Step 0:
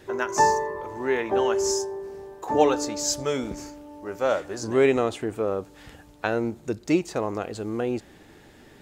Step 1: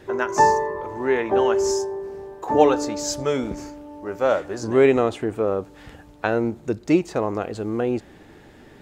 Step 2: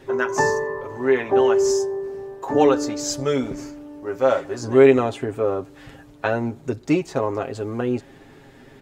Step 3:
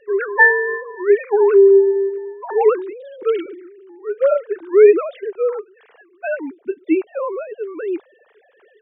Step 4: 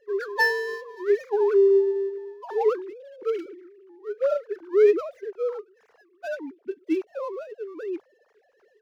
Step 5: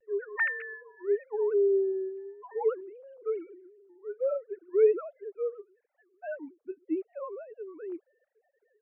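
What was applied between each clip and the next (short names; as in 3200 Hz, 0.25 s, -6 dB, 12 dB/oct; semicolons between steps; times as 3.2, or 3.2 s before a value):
high shelf 3300 Hz -7.5 dB; gain +4 dB
comb 7.4 ms, depth 66%; gain -1 dB
sine-wave speech; gain +4 dB
median filter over 15 samples; gain -8 dB
sine-wave speech; vibrato 0.86 Hz 52 cents; gain -6 dB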